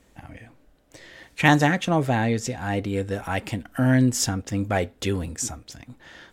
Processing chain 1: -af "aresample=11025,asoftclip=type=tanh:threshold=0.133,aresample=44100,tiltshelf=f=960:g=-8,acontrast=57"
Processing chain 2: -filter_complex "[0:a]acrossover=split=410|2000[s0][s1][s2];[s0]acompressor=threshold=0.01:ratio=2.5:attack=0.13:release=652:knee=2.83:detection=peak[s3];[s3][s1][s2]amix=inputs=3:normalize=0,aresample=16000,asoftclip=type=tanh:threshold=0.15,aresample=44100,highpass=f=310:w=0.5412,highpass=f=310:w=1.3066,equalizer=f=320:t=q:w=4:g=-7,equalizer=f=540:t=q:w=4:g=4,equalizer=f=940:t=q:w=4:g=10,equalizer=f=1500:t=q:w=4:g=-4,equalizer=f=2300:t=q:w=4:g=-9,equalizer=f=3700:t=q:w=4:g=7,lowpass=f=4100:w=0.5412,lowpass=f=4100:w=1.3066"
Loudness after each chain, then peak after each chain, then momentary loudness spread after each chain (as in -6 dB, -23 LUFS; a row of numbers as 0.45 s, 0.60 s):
-22.0 LUFS, -28.5 LUFS; -4.0 dBFS, -9.0 dBFS; 19 LU, 22 LU